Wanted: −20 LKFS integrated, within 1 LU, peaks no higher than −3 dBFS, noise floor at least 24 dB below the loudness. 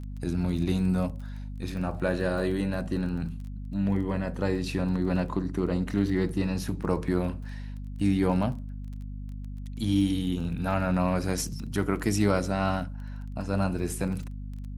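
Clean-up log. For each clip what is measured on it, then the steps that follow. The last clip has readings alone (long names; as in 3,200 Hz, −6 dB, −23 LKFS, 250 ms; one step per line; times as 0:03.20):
crackle rate 19 per second; mains hum 50 Hz; hum harmonics up to 250 Hz; level of the hum −34 dBFS; integrated loudness −28.5 LKFS; sample peak −10.0 dBFS; target loudness −20.0 LKFS
→ click removal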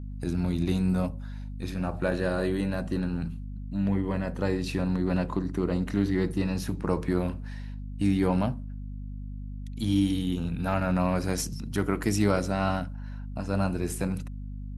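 crackle rate 0 per second; mains hum 50 Hz; hum harmonics up to 250 Hz; level of the hum −34 dBFS
→ hum removal 50 Hz, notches 5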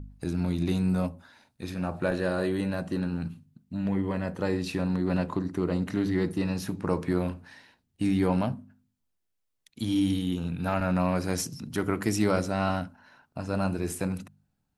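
mains hum none found; integrated loudness −29.0 LKFS; sample peak −10.5 dBFS; target loudness −20.0 LKFS
→ level +9 dB
brickwall limiter −3 dBFS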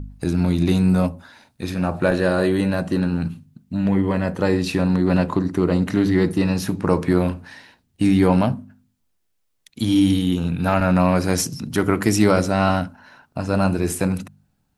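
integrated loudness −20.0 LKFS; sample peak −3.0 dBFS; background noise floor −69 dBFS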